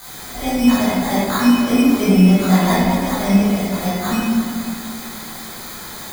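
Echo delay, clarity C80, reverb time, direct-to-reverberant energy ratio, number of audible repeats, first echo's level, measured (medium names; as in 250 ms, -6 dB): no echo, -1.0 dB, 2.6 s, -12.0 dB, no echo, no echo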